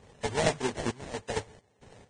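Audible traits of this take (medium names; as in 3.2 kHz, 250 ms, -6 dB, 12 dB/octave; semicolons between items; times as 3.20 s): aliases and images of a low sample rate 1.3 kHz, jitter 20%; random-step tremolo 4.4 Hz, depth 90%; Vorbis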